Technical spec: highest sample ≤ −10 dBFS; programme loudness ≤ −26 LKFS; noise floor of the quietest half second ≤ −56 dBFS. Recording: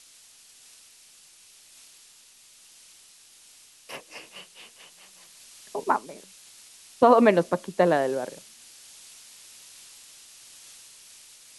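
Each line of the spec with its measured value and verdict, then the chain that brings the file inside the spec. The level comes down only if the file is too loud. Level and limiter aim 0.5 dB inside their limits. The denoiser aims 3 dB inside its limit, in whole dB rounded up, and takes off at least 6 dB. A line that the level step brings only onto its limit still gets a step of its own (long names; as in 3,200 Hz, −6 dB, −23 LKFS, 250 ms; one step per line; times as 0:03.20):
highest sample −5.0 dBFS: out of spec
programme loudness −23.0 LKFS: out of spec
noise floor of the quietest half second −54 dBFS: out of spec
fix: level −3.5 dB
brickwall limiter −10.5 dBFS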